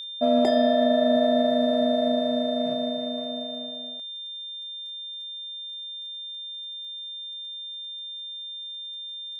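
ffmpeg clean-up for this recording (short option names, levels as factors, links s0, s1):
-af "adeclick=t=4,bandreject=f=3600:w=30"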